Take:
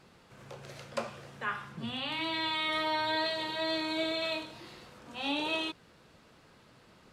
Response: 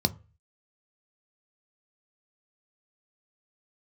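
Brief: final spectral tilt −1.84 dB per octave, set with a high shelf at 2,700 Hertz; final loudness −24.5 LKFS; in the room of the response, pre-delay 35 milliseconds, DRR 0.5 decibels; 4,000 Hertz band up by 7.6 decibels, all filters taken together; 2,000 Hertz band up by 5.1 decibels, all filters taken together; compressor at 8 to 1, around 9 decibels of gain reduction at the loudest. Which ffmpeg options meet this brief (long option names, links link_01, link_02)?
-filter_complex "[0:a]equalizer=frequency=2000:width_type=o:gain=3,highshelf=frequency=2700:gain=4,equalizer=frequency=4000:width_type=o:gain=5,acompressor=threshold=-33dB:ratio=8,asplit=2[link_01][link_02];[1:a]atrim=start_sample=2205,adelay=35[link_03];[link_02][link_03]afir=irnorm=-1:irlink=0,volume=-9.5dB[link_04];[link_01][link_04]amix=inputs=2:normalize=0,volume=8dB"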